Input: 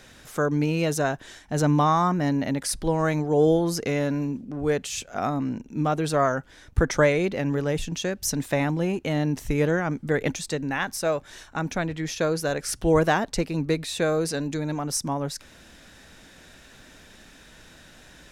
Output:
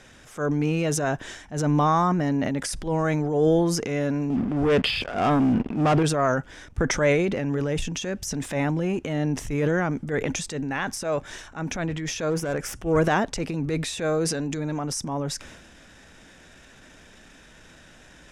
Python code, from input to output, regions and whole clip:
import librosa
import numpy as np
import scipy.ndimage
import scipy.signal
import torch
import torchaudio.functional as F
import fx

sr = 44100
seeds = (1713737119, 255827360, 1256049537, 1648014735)

y = fx.chain(x, sr, fx.cheby1_lowpass(hz=5000.0, order=10),
    fx.notch(hz=3900.0, q=12.0),
    fx.leveller(passes=3), at=(4.3, 6.03))
y = fx.chain(y, sr, fx.self_delay(depth_ms=0.13),
    fx.peak_eq(hz=4200.0, db=-9.0, octaves=0.64), at=(12.3, 12.97))
y = scipy.signal.sosfilt(scipy.signal.butter(2, 8900.0, 'lowpass', fs=sr, output='sos'), y)
y = fx.peak_eq(y, sr, hz=4200.0, db=-7.5, octaves=0.31)
y = fx.transient(y, sr, attack_db=-8, sustain_db=7)